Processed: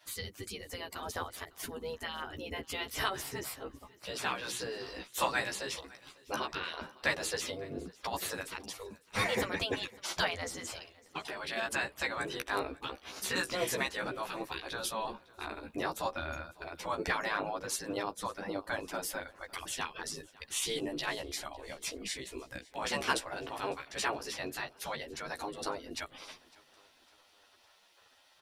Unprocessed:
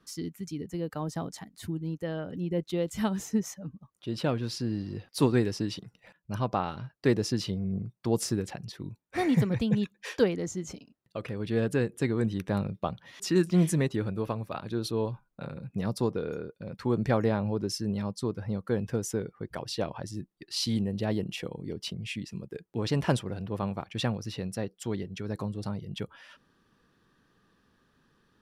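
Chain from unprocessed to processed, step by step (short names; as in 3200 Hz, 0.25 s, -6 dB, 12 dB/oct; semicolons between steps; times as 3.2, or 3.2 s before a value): spectral gate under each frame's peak -15 dB weak; in parallel at +1 dB: compressor, threshold -51 dBFS, peak gain reduction 19 dB; on the sum: flange 0.11 Hz, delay 9.8 ms, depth 6.4 ms, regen 0%; feedback echo 0.554 s, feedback 45%, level -23 dB; gain +8 dB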